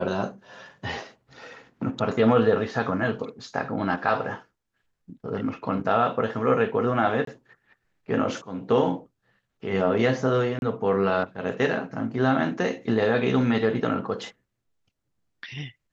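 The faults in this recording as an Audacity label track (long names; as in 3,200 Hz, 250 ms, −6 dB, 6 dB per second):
7.250000	7.270000	drop-out 23 ms
10.590000	10.620000	drop-out 31 ms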